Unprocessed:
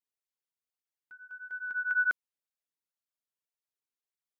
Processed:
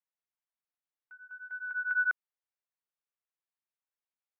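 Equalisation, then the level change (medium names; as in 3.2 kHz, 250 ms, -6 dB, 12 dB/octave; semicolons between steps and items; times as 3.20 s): band-pass 600–2100 Hz; 0.0 dB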